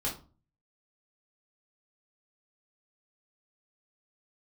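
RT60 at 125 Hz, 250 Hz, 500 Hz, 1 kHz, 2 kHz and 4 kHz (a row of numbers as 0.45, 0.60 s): 0.65, 0.50, 0.35, 0.35, 0.25, 0.25 s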